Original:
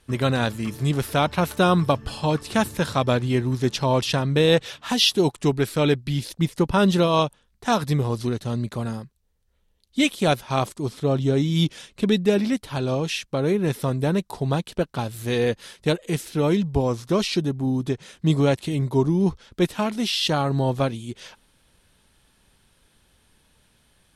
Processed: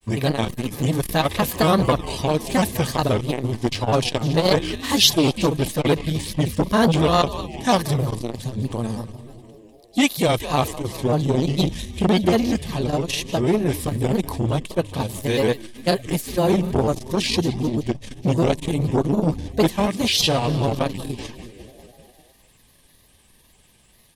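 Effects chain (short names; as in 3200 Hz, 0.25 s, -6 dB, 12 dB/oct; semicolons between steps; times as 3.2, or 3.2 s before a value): on a send: frequency-shifting echo 0.196 s, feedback 64%, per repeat -120 Hz, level -14.5 dB; on the sum: grains, spray 22 ms, pitch spread up and down by 3 st; Butterworth band-stop 1400 Hz, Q 4.8; high shelf 9700 Hz +11.5 dB; core saturation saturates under 710 Hz; gain +5 dB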